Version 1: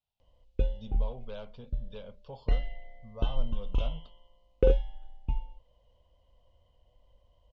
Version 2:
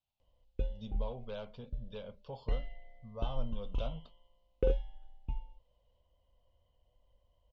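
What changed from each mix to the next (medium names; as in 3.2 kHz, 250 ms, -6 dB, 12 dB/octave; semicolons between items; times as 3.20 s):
background -7.0 dB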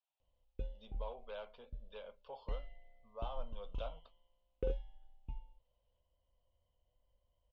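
speech: add band-pass 580–3000 Hz; background -7.5 dB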